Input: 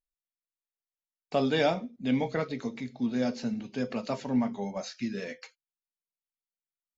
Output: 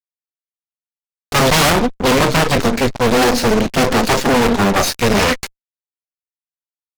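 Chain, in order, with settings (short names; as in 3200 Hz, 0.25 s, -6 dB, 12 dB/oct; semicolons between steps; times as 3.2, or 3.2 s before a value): added harmonics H 4 -7 dB, 8 -10 dB, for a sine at -14 dBFS; fuzz box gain 41 dB, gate -46 dBFS; gain +2 dB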